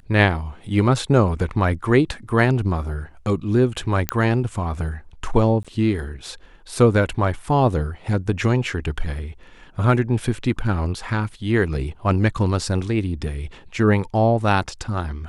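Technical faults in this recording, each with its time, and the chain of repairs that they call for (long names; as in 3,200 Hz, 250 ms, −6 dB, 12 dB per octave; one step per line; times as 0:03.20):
0:04.09: click −3 dBFS
0:05.63–0:05.65: drop-out 16 ms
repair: click removal
repair the gap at 0:05.63, 16 ms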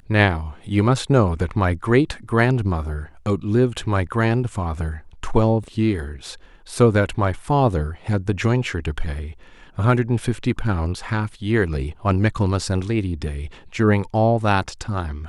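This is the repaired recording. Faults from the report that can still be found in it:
none of them is left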